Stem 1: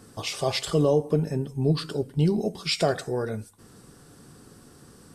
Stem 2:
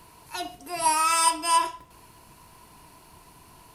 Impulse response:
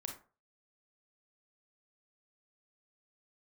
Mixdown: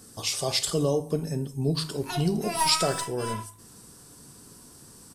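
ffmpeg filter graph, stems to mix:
-filter_complex "[0:a]bass=frequency=250:gain=2,treble=frequency=4000:gain=12,bandreject=frequency=51.82:width_type=h:width=4,bandreject=frequency=103.64:width_type=h:width=4,bandreject=frequency=155.46:width_type=h:width=4,volume=-6.5dB,asplit=2[link_01][link_02];[link_02]volume=-5dB[link_03];[1:a]aeval=exprs='(tanh(5.62*val(0)+0.55)-tanh(0.55))/5.62':channel_layout=same,adelay=1750,volume=-1.5dB,afade=type=out:start_time=2.53:duration=0.36:silence=0.237137,asplit=2[link_04][link_05];[link_05]volume=-2.5dB[link_06];[2:a]atrim=start_sample=2205[link_07];[link_03][link_06]amix=inputs=2:normalize=0[link_08];[link_08][link_07]afir=irnorm=-1:irlink=0[link_09];[link_01][link_04][link_09]amix=inputs=3:normalize=0"

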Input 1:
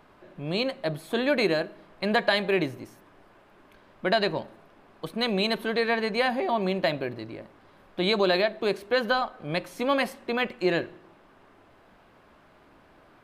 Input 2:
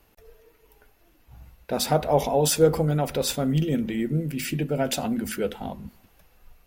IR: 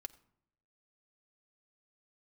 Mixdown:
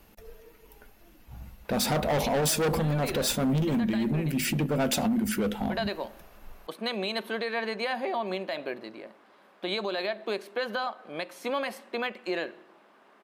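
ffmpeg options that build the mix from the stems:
-filter_complex "[0:a]highpass=380,adelay=1650,volume=-1dB[link_01];[1:a]asoftclip=type=hard:threshold=-24.5dB,volume=2.5dB,asplit=3[link_02][link_03][link_04];[link_03]volume=-11.5dB[link_05];[link_04]apad=whole_len=656428[link_06];[link_01][link_06]sidechaincompress=threshold=-33dB:ratio=8:attack=16:release=103[link_07];[2:a]atrim=start_sample=2205[link_08];[link_05][link_08]afir=irnorm=-1:irlink=0[link_09];[link_07][link_02][link_09]amix=inputs=3:normalize=0,equalizer=frequency=210:width=4.8:gain=8.5,alimiter=limit=-20.5dB:level=0:latency=1:release=143"

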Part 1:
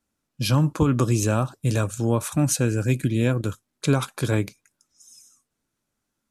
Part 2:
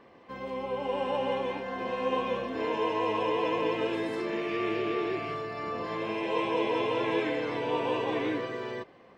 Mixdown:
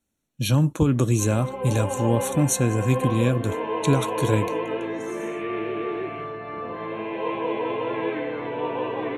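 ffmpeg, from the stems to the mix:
ffmpeg -i stem1.wav -i stem2.wav -filter_complex "[0:a]equalizer=frequency=1200:width=1.5:gain=-6.5,volume=0.5dB[link_01];[1:a]lowpass=2400,adelay=900,volume=2dB[link_02];[link_01][link_02]amix=inputs=2:normalize=0,asuperstop=centerf=4900:order=12:qfactor=5.5" out.wav

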